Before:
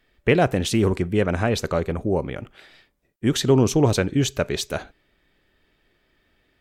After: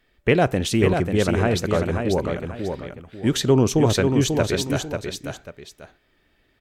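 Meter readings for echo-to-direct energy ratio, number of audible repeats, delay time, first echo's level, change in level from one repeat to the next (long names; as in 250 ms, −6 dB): −5.0 dB, 2, 541 ms, −5.5 dB, −10.0 dB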